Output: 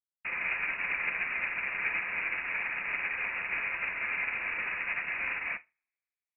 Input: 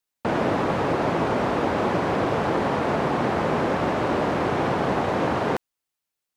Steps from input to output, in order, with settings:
coupled-rooms reverb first 0.58 s, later 2.1 s, from −18 dB, DRR 5.5 dB
voice inversion scrambler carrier 2,700 Hz
expander for the loud parts 2.5 to 1, over −43 dBFS
level −8 dB

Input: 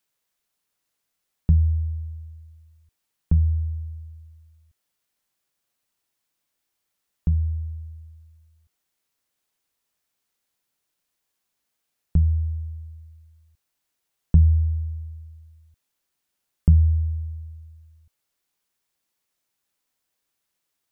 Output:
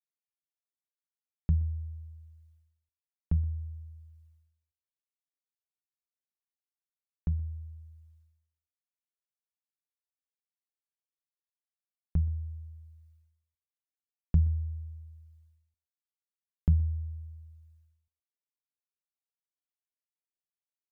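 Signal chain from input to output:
reverb reduction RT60 0.53 s
downward expander −51 dBFS
single-tap delay 123 ms −21.5 dB
level −8.5 dB

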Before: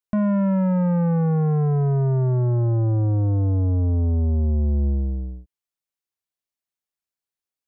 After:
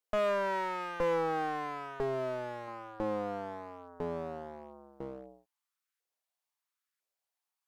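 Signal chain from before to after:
auto-filter high-pass saw up 1 Hz 460–1,600 Hz
asymmetric clip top −41 dBFS, bottom −21 dBFS
0:02.00–0:02.68: octave-band graphic EQ 125/250/500/1,000 Hz +3/−7/+3/−6 dB

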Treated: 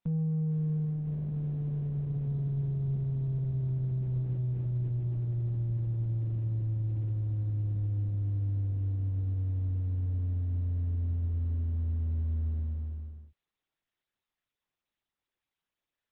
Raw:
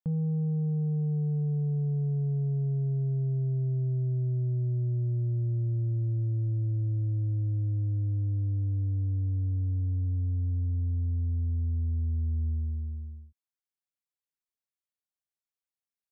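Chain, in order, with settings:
level −1 dB
Opus 6 kbit/s 48,000 Hz

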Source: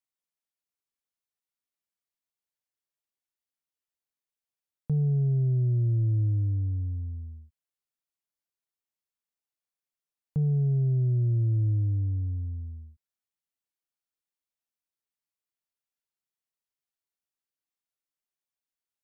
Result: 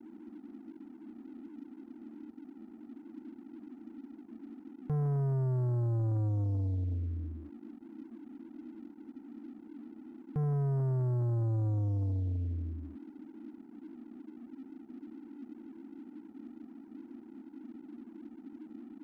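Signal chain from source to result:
noise in a band 220–330 Hz −48 dBFS
leveller curve on the samples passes 2
level −7.5 dB

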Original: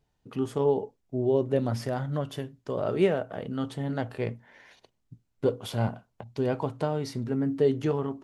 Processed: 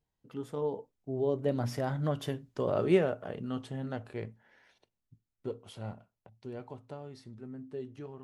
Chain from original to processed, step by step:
source passing by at 0:02.44, 18 m/s, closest 13 metres

